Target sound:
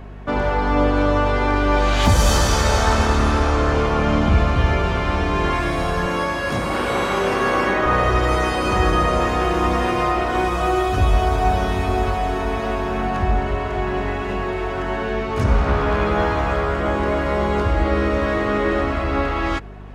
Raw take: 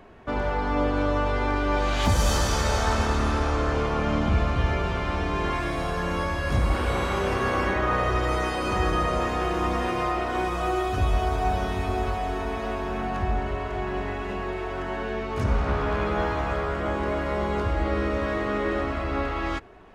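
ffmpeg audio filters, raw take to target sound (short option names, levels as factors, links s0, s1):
-filter_complex "[0:a]asettb=1/sr,asplit=3[s0][s1][s2];[s0]atrim=end=6.064[s3];[s1]atrim=start=6.06:end=7.86,asetpts=PTS-STARTPTS,afade=t=in:d=0.004:c=qsin,afade=t=out:st=1.796:d=0.004:c=qsin,highpass=180[s4];[s2]atrim=start=7.856[s5];[s3][s4]acrossfade=d=0.004:c1=hsin:c2=qsin[s6];[s6][s5]acrossfade=d=0.004:c1=qsin:c2=hsin,aeval=exprs='val(0)+0.00794*(sin(2*PI*50*n/s)+sin(2*PI*2*50*n/s)/2+sin(2*PI*3*50*n/s)/3+sin(2*PI*4*50*n/s)/4+sin(2*PI*5*50*n/s)/5)':c=same,volume=2.11"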